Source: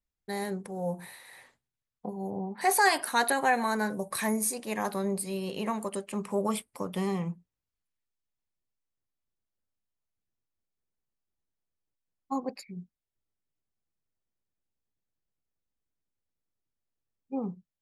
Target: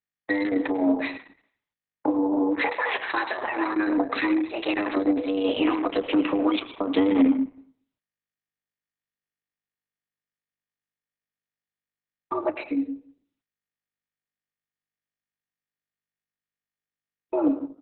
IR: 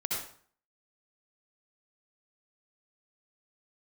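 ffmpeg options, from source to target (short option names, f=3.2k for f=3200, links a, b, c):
-filter_complex "[0:a]agate=range=-36dB:threshold=-44dB:ratio=16:detection=peak,alimiter=limit=-23.5dB:level=0:latency=1:release=166,lowshelf=f=490:g=5,aecho=1:1:5.5:0.53,acontrast=72,equalizer=f=2.4k:t=o:w=1.9:g=9.5,acrossover=split=260[a][b];[b]acompressor=threshold=-26dB:ratio=8[c];[a][c]amix=inputs=2:normalize=0,asplit=2[d][e];[1:a]atrim=start_sample=2205,adelay=29[f];[e][f]afir=irnorm=-1:irlink=0,volume=-14.5dB[g];[d][g]amix=inputs=2:normalize=0,afreqshift=98,volume=1dB" -ar 48000 -c:a libopus -b:a 6k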